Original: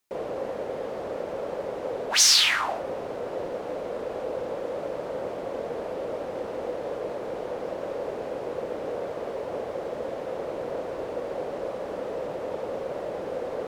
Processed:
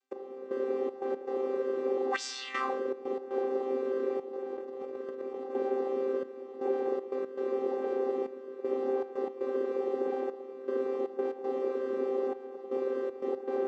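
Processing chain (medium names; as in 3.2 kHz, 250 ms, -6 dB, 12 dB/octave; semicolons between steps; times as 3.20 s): vocoder on a held chord bare fifth, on C4; trance gate "x...xxx.x.xxxxxx" 118 bpm -12 dB; 4.33–5.55 s: compressor with a negative ratio -38 dBFS, ratio -1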